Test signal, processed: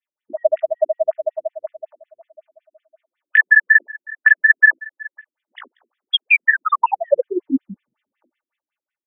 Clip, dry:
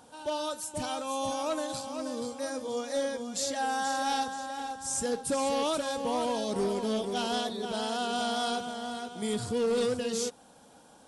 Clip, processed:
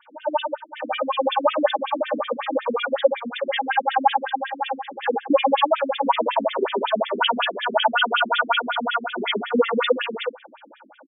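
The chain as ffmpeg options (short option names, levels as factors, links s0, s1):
-filter_complex "[0:a]highpass=f=120:w=0.5412,highpass=f=120:w=1.3066,aemphasis=mode=production:type=bsi,aecho=1:1:3.4:0.79,adynamicequalizer=threshold=0.00562:dfrequency=280:dqfactor=0.84:tfrequency=280:tqfactor=0.84:attack=5:release=100:ratio=0.375:range=2.5:mode=cutabove:tftype=bell,dynaudnorm=f=330:g=7:m=5.31,asplit=2[s0][s1];[s1]highpass=f=720:p=1,volume=3.98,asoftclip=type=tanh:threshold=0.891[s2];[s0][s2]amix=inputs=2:normalize=0,lowpass=f=1500:p=1,volume=0.501,asplit=2[s3][s4];[s4]acompressor=threshold=0.0794:ratio=6,volume=1[s5];[s3][s5]amix=inputs=2:normalize=0,flanger=delay=16.5:depth=3.2:speed=2.6,apsyclip=2.66,asplit=2[s6][s7];[s7]aecho=0:1:37|49:0.188|0.15[s8];[s6][s8]amix=inputs=2:normalize=0,afftfilt=real='re*between(b*sr/1024,250*pow(2600/250,0.5+0.5*sin(2*PI*5.4*pts/sr))/1.41,250*pow(2600/250,0.5+0.5*sin(2*PI*5.4*pts/sr))*1.41)':imag='im*between(b*sr/1024,250*pow(2600/250,0.5+0.5*sin(2*PI*5.4*pts/sr))/1.41,250*pow(2600/250,0.5+0.5*sin(2*PI*5.4*pts/sr))*1.41)':win_size=1024:overlap=0.75,volume=0.708"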